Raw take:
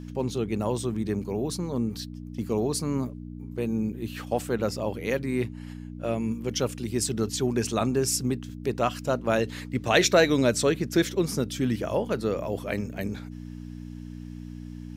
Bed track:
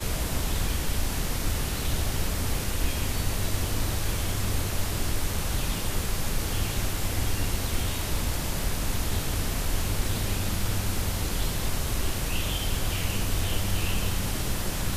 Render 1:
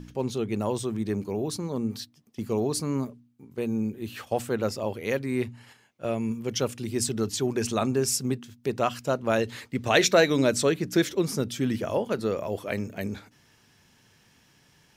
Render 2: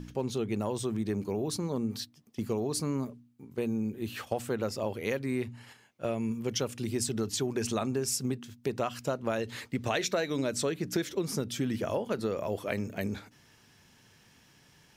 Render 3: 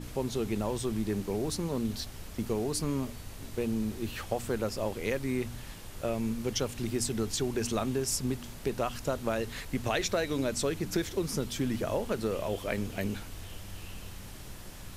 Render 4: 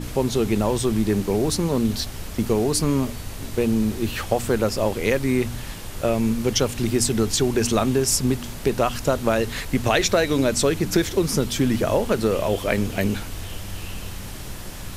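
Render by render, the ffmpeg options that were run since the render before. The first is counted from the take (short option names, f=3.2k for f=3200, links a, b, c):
-af "bandreject=f=60:t=h:w=4,bandreject=f=120:t=h:w=4,bandreject=f=180:t=h:w=4,bandreject=f=240:t=h:w=4,bandreject=f=300:t=h:w=4"
-af "acompressor=threshold=-27dB:ratio=6"
-filter_complex "[1:a]volume=-16.5dB[a];[0:a][a]amix=inputs=2:normalize=0"
-af "volume=10.5dB"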